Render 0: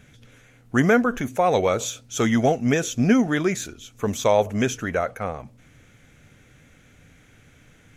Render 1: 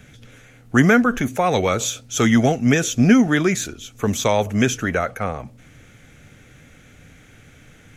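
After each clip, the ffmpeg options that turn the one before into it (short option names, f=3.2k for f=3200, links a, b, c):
-filter_complex "[0:a]bandreject=f=1k:w=18,acrossover=split=380|840|2600[a][b][c][d];[b]acompressor=threshold=-34dB:ratio=6[e];[a][e][c][d]amix=inputs=4:normalize=0,volume=5.5dB"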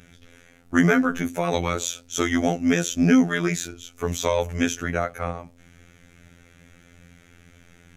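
-af "afftfilt=real='hypot(re,im)*cos(PI*b)':imag='0':win_size=2048:overlap=0.75,volume=-1dB"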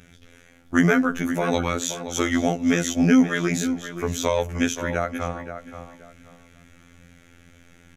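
-filter_complex "[0:a]asplit=2[a][b];[b]adelay=526,lowpass=f=2.8k:p=1,volume=-10dB,asplit=2[c][d];[d]adelay=526,lowpass=f=2.8k:p=1,volume=0.25,asplit=2[e][f];[f]adelay=526,lowpass=f=2.8k:p=1,volume=0.25[g];[a][c][e][g]amix=inputs=4:normalize=0"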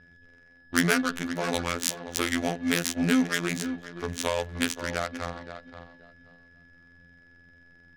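-af "aeval=exprs='val(0)+0.0126*sin(2*PI*1700*n/s)':c=same,adynamicsmooth=sensitivity=1.5:basefreq=600,crystalizer=i=6.5:c=0,volume=-7.5dB"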